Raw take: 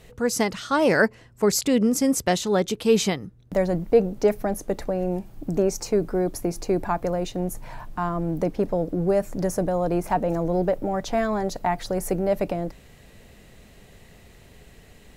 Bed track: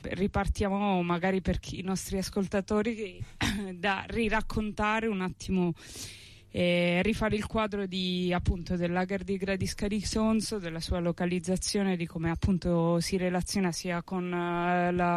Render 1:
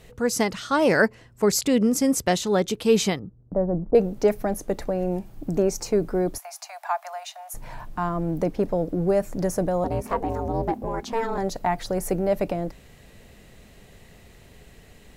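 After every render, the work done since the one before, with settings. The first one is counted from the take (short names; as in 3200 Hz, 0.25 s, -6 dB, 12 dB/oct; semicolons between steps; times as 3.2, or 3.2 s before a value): 3.19–3.95 Bessel low-pass 780 Hz, order 8; 6.38–7.54 steep high-pass 640 Hz 96 dB/oct; 9.84–11.38 ring modulator 230 Hz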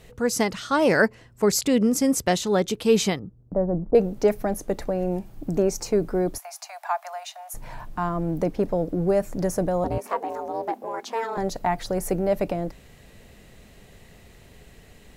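9.98–11.37 HPF 440 Hz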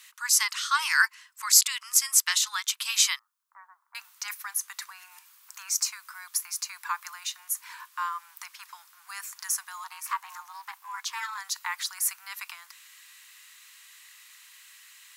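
steep high-pass 1000 Hz 72 dB/oct; high shelf 3400 Hz +9.5 dB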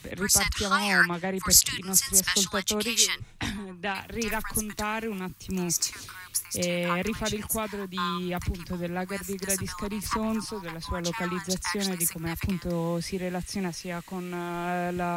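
add bed track -2.5 dB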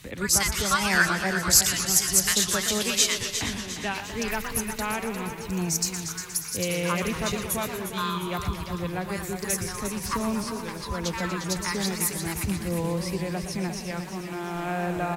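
feedback echo 0.353 s, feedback 46%, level -10 dB; warbling echo 0.12 s, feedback 72%, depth 180 cents, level -10 dB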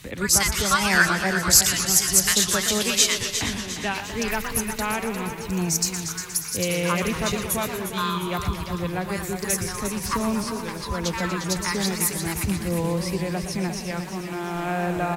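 gain +3 dB; limiter -2 dBFS, peak gain reduction 1 dB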